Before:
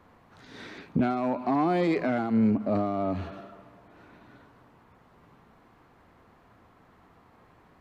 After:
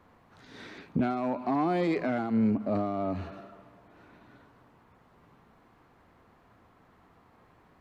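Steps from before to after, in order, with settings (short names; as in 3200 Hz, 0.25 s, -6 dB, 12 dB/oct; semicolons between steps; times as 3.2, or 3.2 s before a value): 3.07–3.53 notch 3300 Hz, Q 12; gain -2.5 dB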